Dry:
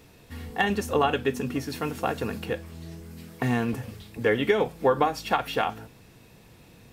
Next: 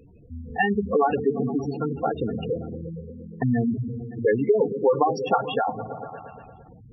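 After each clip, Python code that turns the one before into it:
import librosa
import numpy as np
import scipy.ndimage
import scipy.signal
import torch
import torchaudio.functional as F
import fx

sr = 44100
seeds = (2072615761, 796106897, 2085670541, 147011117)

y = fx.echo_opening(x, sr, ms=115, hz=200, octaves=1, feedback_pct=70, wet_db=-6)
y = fx.spec_gate(y, sr, threshold_db=-10, keep='strong')
y = y * librosa.db_to_amplitude(3.5)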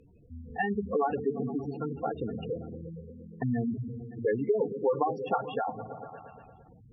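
y = fx.env_lowpass_down(x, sr, base_hz=2100.0, full_db=-21.5)
y = y * librosa.db_to_amplitude(-7.0)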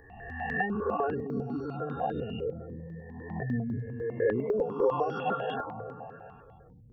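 y = fx.spec_swells(x, sr, rise_s=1.31)
y = fx.phaser_held(y, sr, hz=10.0, low_hz=740.0, high_hz=3000.0)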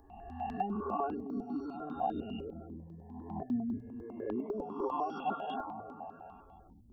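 y = fx.fixed_phaser(x, sr, hz=490.0, stages=6)
y = fx.rider(y, sr, range_db=4, speed_s=2.0)
y = y * librosa.db_to_amplitude(-2.0)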